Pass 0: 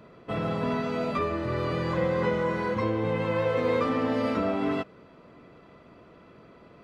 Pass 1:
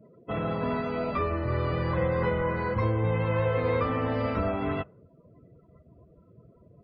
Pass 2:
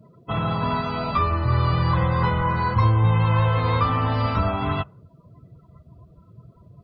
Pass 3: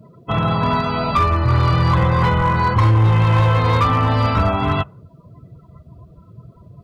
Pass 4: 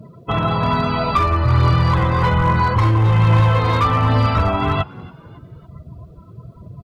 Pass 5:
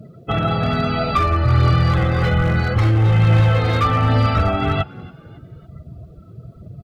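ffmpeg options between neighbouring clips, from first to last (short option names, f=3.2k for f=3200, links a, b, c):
-filter_complex "[0:a]afftdn=nr=29:nf=-45,asubboost=boost=9.5:cutoff=83,acrossover=split=3500[a][b];[b]acompressor=threshold=-57dB:ratio=4:attack=1:release=60[c];[a][c]amix=inputs=2:normalize=0"
-af "equalizer=f=125:t=o:w=1:g=4,equalizer=f=250:t=o:w=1:g=-5,equalizer=f=500:t=o:w=1:g=-11,equalizer=f=1k:t=o:w=1:g=6,equalizer=f=2k:t=o:w=1:g=-7,equalizer=f=4k:t=o:w=1:g=8,volume=7.5dB"
-af "volume=16dB,asoftclip=hard,volume=-16dB,volume=6dB"
-filter_complex "[0:a]asplit=2[a][b];[b]acompressor=threshold=-24dB:ratio=6,volume=0.5dB[c];[a][c]amix=inputs=2:normalize=0,asplit=4[d][e][f][g];[e]adelay=278,afreqshift=80,volume=-23dB[h];[f]adelay=556,afreqshift=160,volume=-31dB[i];[g]adelay=834,afreqshift=240,volume=-38.9dB[j];[d][h][i][j]amix=inputs=4:normalize=0,aphaser=in_gain=1:out_gain=1:delay=3.3:decay=0.27:speed=1.2:type=triangular,volume=-3dB"
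-af "asuperstop=centerf=1000:order=4:qfactor=4.2"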